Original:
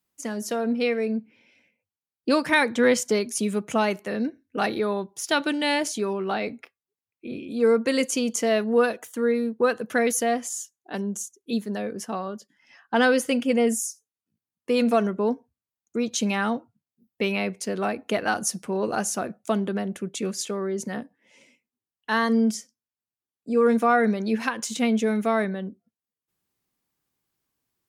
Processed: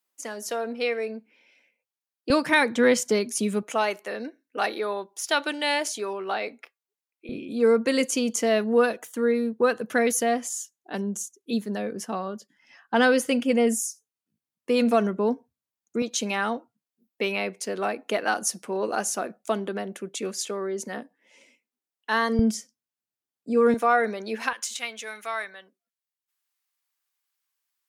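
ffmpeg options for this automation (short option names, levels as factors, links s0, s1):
-af "asetnsamples=n=441:p=0,asendcmd='2.3 highpass f 110;3.63 highpass f 440;7.29 highpass f 110;16.02 highpass f 290;22.39 highpass f 100;23.74 highpass f 410;24.53 highpass f 1200',highpass=430"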